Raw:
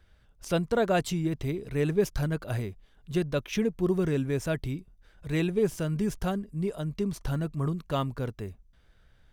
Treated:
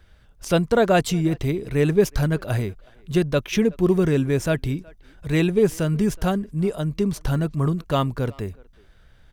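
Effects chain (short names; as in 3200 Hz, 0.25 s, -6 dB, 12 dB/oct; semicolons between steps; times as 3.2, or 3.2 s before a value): speakerphone echo 0.37 s, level -24 dB; gain +7.5 dB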